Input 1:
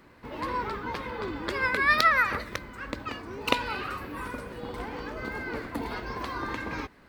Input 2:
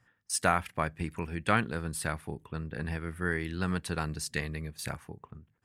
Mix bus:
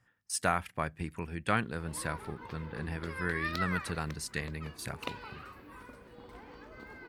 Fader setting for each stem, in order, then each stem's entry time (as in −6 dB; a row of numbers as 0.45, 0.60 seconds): −14.0, −3.0 decibels; 1.55, 0.00 seconds